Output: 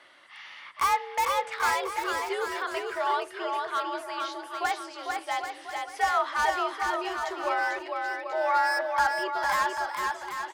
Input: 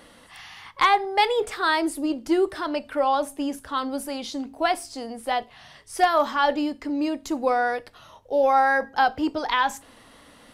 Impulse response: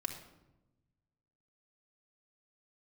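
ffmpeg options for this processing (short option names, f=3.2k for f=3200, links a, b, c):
-filter_complex "[0:a]afreqshift=62,bandpass=f=1.9k:t=q:w=0.92:csg=0,acrossover=split=1500[a][b];[b]aeval=exprs='0.0316*(abs(mod(val(0)/0.0316+3,4)-2)-1)':c=same[c];[a][c]amix=inputs=2:normalize=0,aecho=1:1:450|787.5|1041|1230|1373:0.631|0.398|0.251|0.158|0.1"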